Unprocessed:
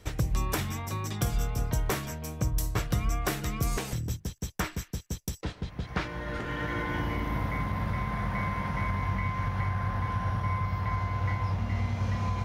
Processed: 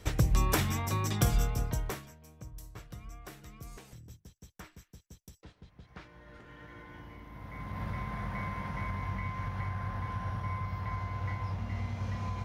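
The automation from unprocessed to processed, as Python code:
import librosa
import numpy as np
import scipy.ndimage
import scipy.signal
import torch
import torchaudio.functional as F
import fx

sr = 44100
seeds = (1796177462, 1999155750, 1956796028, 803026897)

y = fx.gain(x, sr, db=fx.line((1.32, 2.0), (1.86, -6.0), (2.15, -18.0), (7.32, -18.0), (7.82, -6.0)))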